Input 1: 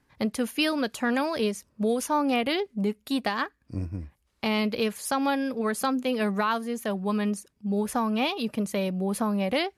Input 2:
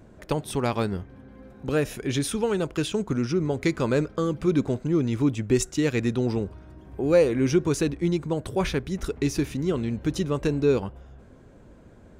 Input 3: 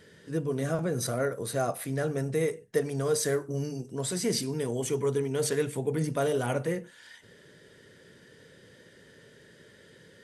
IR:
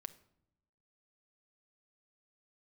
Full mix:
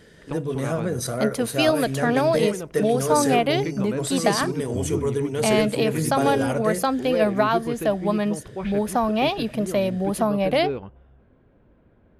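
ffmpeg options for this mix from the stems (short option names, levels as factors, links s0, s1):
-filter_complex "[0:a]equalizer=f=650:t=o:w=0.4:g=10,adelay=1000,volume=1.06,asplit=2[s0][s1];[s1]volume=0.376[s2];[1:a]lowpass=f=3300:w=0.5412,lowpass=f=3300:w=1.3066,volume=0.447[s3];[2:a]volume=1,asplit=2[s4][s5];[s5]volume=0.75[s6];[3:a]atrim=start_sample=2205[s7];[s2][s6]amix=inputs=2:normalize=0[s8];[s8][s7]afir=irnorm=-1:irlink=0[s9];[s0][s3][s4][s9]amix=inputs=4:normalize=0"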